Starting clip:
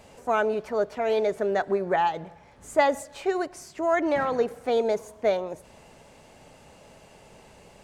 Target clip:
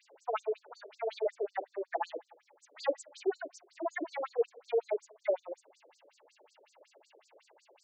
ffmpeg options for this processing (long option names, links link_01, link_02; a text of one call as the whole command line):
ffmpeg -i in.wav -af "afftfilt=real='re*between(b*sr/1024,400*pow(6100/400,0.5+0.5*sin(2*PI*5.4*pts/sr))/1.41,400*pow(6100/400,0.5+0.5*sin(2*PI*5.4*pts/sr))*1.41)':imag='im*between(b*sr/1024,400*pow(6100/400,0.5+0.5*sin(2*PI*5.4*pts/sr))/1.41,400*pow(6100/400,0.5+0.5*sin(2*PI*5.4*pts/sr))*1.41)':win_size=1024:overlap=0.75,volume=-3.5dB" out.wav